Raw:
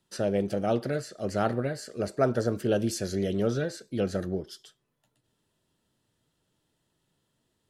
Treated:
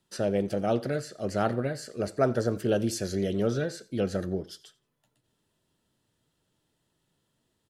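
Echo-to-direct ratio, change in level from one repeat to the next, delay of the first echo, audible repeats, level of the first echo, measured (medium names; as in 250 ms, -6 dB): -21.5 dB, -12.5 dB, 87 ms, 2, -21.5 dB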